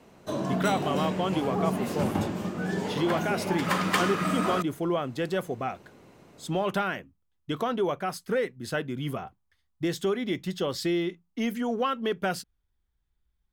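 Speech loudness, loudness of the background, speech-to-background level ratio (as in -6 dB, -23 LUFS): -30.5 LUFS, -29.5 LUFS, -1.0 dB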